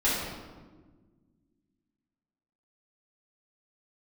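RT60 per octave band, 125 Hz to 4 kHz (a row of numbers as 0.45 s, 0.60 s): 2.3 s, 2.5 s, 1.6 s, 1.2 s, 1.0 s, 0.85 s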